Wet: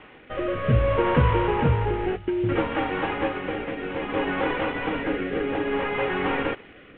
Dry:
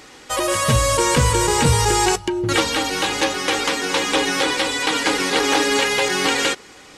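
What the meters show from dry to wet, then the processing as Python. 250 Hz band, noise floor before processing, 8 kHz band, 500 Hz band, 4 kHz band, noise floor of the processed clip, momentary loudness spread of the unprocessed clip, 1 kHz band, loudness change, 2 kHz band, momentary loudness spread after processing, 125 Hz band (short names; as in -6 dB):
-3.0 dB, -44 dBFS, under -40 dB, -3.5 dB, -18.5 dB, -48 dBFS, 4 LU, -7.0 dB, -7.0 dB, -9.0 dB, 9 LU, -2.5 dB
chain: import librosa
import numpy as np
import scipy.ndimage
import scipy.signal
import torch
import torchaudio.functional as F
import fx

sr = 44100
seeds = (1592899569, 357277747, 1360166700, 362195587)

y = fx.cvsd(x, sr, bps=16000)
y = fx.rotary(y, sr, hz=0.6)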